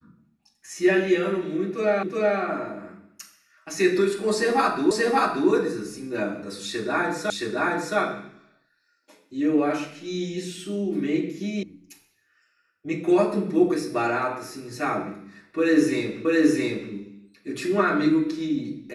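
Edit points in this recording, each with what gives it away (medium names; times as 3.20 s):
2.03 s: repeat of the last 0.37 s
4.91 s: repeat of the last 0.58 s
7.30 s: repeat of the last 0.67 s
11.63 s: sound stops dead
16.25 s: repeat of the last 0.67 s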